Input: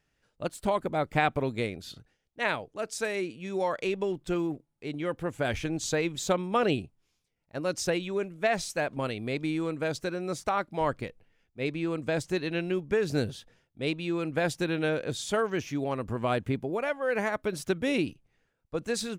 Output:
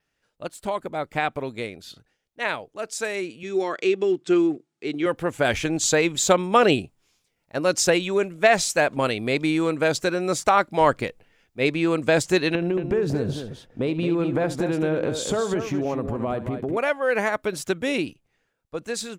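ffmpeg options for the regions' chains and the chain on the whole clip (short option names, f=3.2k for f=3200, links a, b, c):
-filter_complex "[0:a]asettb=1/sr,asplit=3[a][b][c];[a]atrim=end=3.434[d];[b]atrim=start=3.43:end=5.06,asetpts=PTS-STARTPTS,afade=t=in:d=0.004:c=qsin,afade=t=out:st=1.626:d=0.004:c=qsin,highpass=170,equalizer=f=360:t=q:w=4:g=8,equalizer=f=560:t=q:w=4:g=-8,equalizer=f=880:t=q:w=4:g=-4,lowpass=f=8.3k:w=0.5412,lowpass=f=8.3k:w=1.3066,bandreject=f=960:w=9.4[e];[c]atrim=start=5.056[f];[d][e]acrossfade=d=0.004:c1=hsin:c2=qsin[g];[g][f]acrossfade=d=0.004:c1=qsin:c2=hsin,asettb=1/sr,asplit=3[h][i][j];[h]atrim=end=12.554[k];[i]atrim=start=12.55:end=16.77,asetpts=PTS-STARTPTS,afade=t=in:d=0.004:c=qsin,afade=t=out:st=4.216:d=0.004:c=qsin,tiltshelf=f=1.3k:g=8,acompressor=threshold=-28dB:ratio=16:attack=3.2:release=140:knee=1:detection=peak,aecho=1:1:70|222:0.178|0.398,atrim=end_sample=186102[l];[j]atrim=start=16.766[m];[k][l]acrossfade=d=0.004:c1=hsin:c2=qsin[n];[n][m]acrossfade=d=0.004:c1=qsin:c2=hsin,lowshelf=f=210:g=-8,dynaudnorm=f=910:g=9:m=11.5dB,adynamicequalizer=threshold=0.00316:dfrequency=7300:dqfactor=5.7:tfrequency=7300:tqfactor=5.7:attack=5:release=100:ratio=0.375:range=3:mode=boostabove:tftype=bell,volume=1dB"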